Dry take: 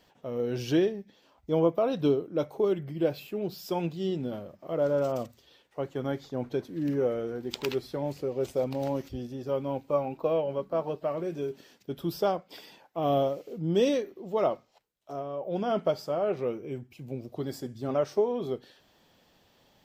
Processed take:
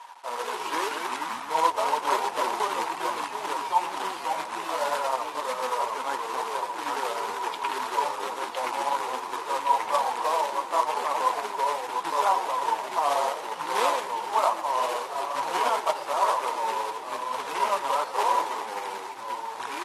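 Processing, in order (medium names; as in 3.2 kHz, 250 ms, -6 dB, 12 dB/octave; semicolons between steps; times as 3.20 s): ever faster or slower copies 84 ms, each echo -2 st, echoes 3; in parallel at -2.5 dB: peak limiter -23.5 dBFS, peak gain reduction 12.5 dB; on the sum: low-pass 3.1 kHz 12 dB/octave; reverse; upward compressor, threshold -27 dBFS; reverse; flange 2 Hz, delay 3.8 ms, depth 6.7 ms, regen +25%; companded quantiser 4-bit; resonant high-pass 960 Hz, resonance Q 11; frequency-shifting echo 116 ms, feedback 63%, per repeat -46 Hz, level -16 dB; AAC 32 kbps 44.1 kHz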